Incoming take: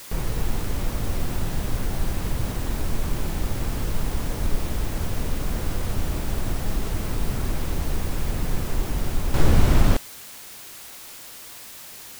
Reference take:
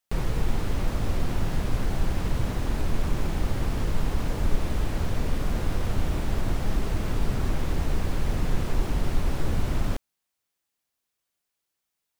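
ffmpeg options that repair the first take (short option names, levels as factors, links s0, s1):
-af "afwtdn=0.0089,asetnsamples=n=441:p=0,asendcmd='9.34 volume volume -9dB',volume=1"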